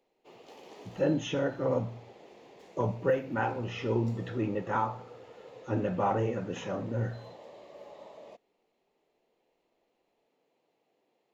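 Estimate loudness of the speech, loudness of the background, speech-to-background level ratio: -32.0 LUFS, -51.0 LUFS, 19.0 dB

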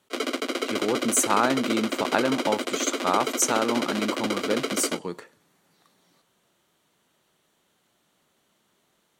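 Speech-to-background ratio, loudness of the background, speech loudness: 2.0 dB, -28.5 LUFS, -26.5 LUFS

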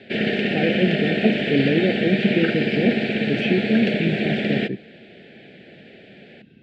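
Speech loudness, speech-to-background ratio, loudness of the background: -24.0 LUFS, -1.5 dB, -22.5 LUFS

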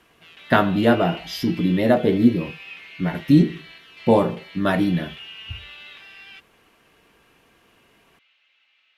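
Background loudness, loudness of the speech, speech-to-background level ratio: -39.0 LUFS, -20.5 LUFS, 18.5 dB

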